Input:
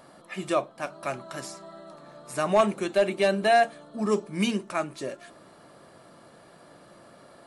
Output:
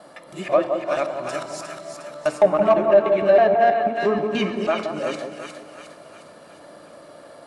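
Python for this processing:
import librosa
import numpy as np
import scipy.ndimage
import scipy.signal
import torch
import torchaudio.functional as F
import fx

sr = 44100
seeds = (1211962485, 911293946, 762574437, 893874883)

p1 = fx.local_reverse(x, sr, ms=161.0)
p2 = fx.low_shelf(p1, sr, hz=140.0, db=-7.5)
p3 = fx.echo_split(p2, sr, split_hz=1100.0, low_ms=171, high_ms=358, feedback_pct=52, wet_db=-6.5)
p4 = fx.env_lowpass_down(p3, sr, base_hz=1600.0, full_db=-19.5)
p5 = fx.rev_fdn(p4, sr, rt60_s=1.6, lf_ratio=1.0, hf_ratio=0.8, size_ms=20.0, drr_db=9.5)
p6 = 10.0 ** (-20.5 / 20.0) * np.tanh(p5 / 10.0 ** (-20.5 / 20.0))
p7 = p5 + (p6 * 10.0 ** (-4.0 / 20.0))
y = fx.peak_eq(p7, sr, hz=580.0, db=7.0, octaves=0.35)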